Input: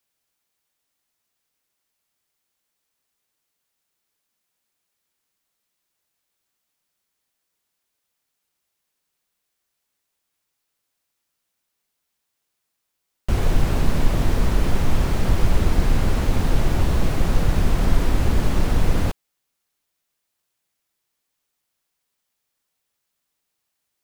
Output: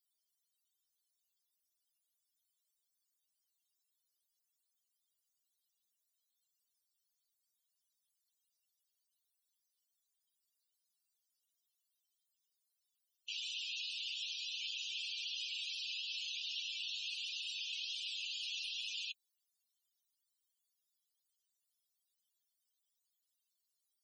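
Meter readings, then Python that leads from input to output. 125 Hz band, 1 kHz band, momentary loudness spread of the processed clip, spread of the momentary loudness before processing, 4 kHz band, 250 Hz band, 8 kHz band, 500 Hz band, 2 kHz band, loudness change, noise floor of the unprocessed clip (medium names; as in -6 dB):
under -40 dB, under -40 dB, 1 LU, 2 LU, -0.5 dB, under -40 dB, -12.5 dB, under -40 dB, -11.5 dB, -16.5 dB, -78 dBFS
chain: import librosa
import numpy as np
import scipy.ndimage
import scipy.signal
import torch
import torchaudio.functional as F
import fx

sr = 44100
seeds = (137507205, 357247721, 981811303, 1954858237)

y = scipy.signal.sosfilt(scipy.signal.butter(8, 2600.0, 'highpass', fs=sr, output='sos'), x)
y = fx.spec_topn(y, sr, count=32)
y = F.gain(torch.from_numpy(y), 3.5).numpy()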